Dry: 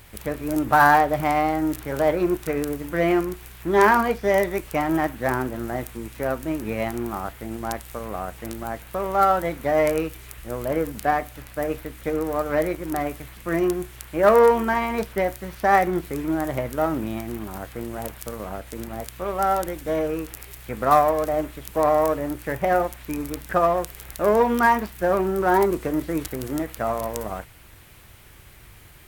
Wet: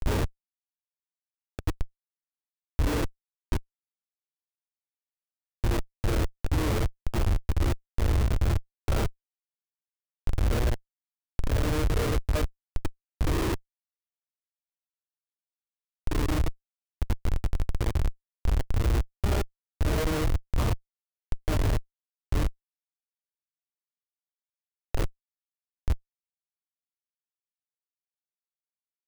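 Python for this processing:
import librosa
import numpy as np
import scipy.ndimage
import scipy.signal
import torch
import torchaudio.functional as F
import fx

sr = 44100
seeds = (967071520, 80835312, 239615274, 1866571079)

p1 = fx.spec_swells(x, sr, rise_s=2.74)
p2 = fx.peak_eq(p1, sr, hz=740.0, db=-11.5, octaves=0.21)
p3 = fx.level_steps(p2, sr, step_db=9)
p4 = p2 + F.gain(torch.from_numpy(p3), -1.5).numpy()
p5 = fx.gate_flip(p4, sr, shuts_db=-8.0, range_db=-37)
p6 = fx.rider(p5, sr, range_db=4, speed_s=2.0)
p7 = scipy.signal.sosfilt(scipy.signal.butter(2, 1600.0, 'lowpass', fs=sr, output='sos'), p6)
p8 = fx.rev_gated(p7, sr, seeds[0], gate_ms=130, shape='rising', drr_db=-6.0)
p9 = fx.quant_dither(p8, sr, seeds[1], bits=12, dither='none')
p10 = p9 + fx.echo_feedback(p9, sr, ms=1004, feedback_pct=33, wet_db=-15.5, dry=0)
p11 = fx.schmitt(p10, sr, flips_db=-13.0)
p12 = fx.low_shelf_res(p11, sr, hz=120.0, db=6.0, q=1.5)
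y = F.gain(torch.from_numpy(p12), -6.0).numpy()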